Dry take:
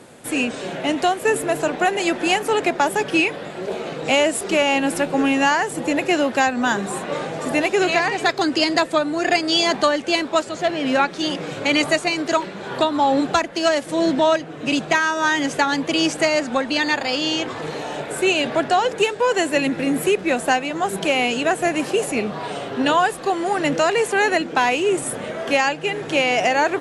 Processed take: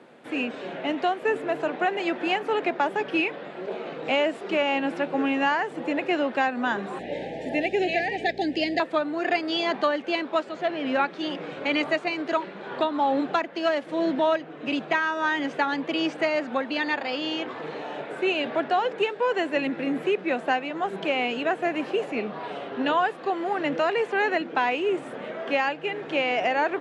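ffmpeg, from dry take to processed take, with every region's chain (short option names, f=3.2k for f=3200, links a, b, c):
-filter_complex "[0:a]asettb=1/sr,asplit=3[a][b][c];[a]atrim=end=6.994[d];[b]atrim=start=6.99:end=8.8,asetpts=PTS-STARTPTS,afade=t=in:d=0.004:c=qsin,afade=t=out:st=1.806:d=0.004:c=qsin,highshelf=f=8.9k:g=5.5,aeval=exprs='val(0)+0.0316*(sin(2*PI*60*n/s)+sin(2*PI*2*60*n/s)/2+sin(2*PI*3*60*n/s)/3+sin(2*PI*4*60*n/s)/4+sin(2*PI*5*60*n/s)/5)':c=same,asuperstop=centerf=1200:order=12:qfactor=1.5[e];[c]atrim=start=8.796[f];[d][e]acrossfade=d=0.004:c1=hsin:c2=qsin[g];[g][f]acrossfade=d=0.004:c1=qsin:c2=hsin,acrossover=split=7500[h][i];[i]acompressor=threshold=-41dB:ratio=4:attack=1:release=60[j];[h][j]amix=inputs=2:normalize=0,acrossover=split=160 3800:gain=0.0708 1 0.0891[k][l][m];[k][l][m]amix=inputs=3:normalize=0,volume=-5.5dB"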